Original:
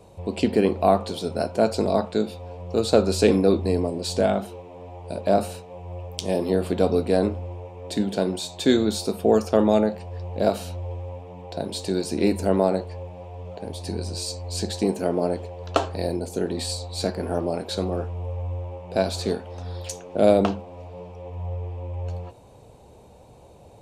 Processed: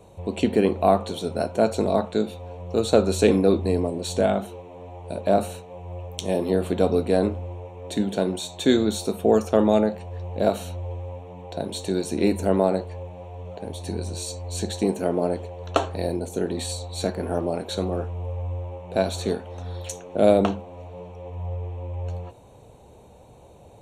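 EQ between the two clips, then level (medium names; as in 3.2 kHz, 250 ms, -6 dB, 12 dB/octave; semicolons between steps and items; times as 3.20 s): Butterworth band-stop 4.9 kHz, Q 4.7; 0.0 dB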